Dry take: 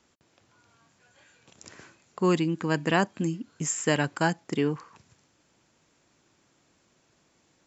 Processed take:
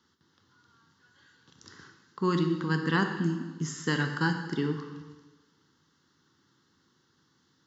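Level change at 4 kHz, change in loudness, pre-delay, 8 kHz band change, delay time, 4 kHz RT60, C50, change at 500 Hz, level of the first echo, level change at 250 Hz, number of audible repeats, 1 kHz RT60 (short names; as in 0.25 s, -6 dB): -2.0 dB, -2.0 dB, 6 ms, n/a, none, 1.2 s, 7.0 dB, -5.5 dB, none, -1.5 dB, none, 1.3 s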